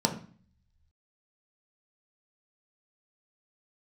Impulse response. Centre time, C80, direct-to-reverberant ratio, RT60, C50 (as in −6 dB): 14 ms, 14.5 dB, 2.0 dB, 0.45 s, 10.5 dB